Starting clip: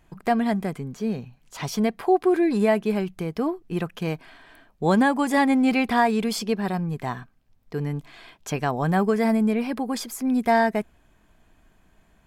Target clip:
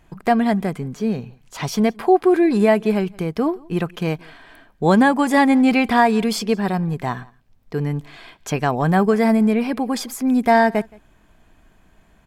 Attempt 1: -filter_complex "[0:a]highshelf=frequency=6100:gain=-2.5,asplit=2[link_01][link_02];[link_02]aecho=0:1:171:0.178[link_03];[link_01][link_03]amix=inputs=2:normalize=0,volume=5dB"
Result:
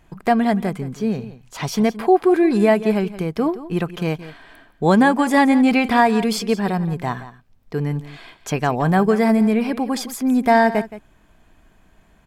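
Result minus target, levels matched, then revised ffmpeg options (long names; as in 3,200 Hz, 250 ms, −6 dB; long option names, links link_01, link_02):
echo-to-direct +10.5 dB
-filter_complex "[0:a]highshelf=frequency=6100:gain=-2.5,asplit=2[link_01][link_02];[link_02]aecho=0:1:171:0.0531[link_03];[link_01][link_03]amix=inputs=2:normalize=0,volume=5dB"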